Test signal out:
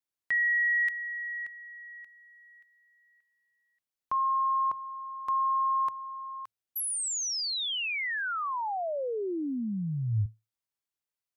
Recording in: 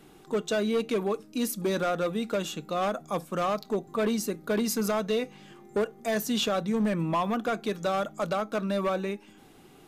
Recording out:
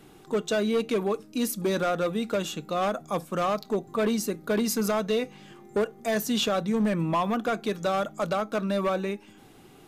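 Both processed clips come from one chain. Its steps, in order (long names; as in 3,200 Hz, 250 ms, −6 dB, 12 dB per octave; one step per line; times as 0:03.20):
parametric band 110 Hz +7.5 dB 0.21 octaves
level +1.5 dB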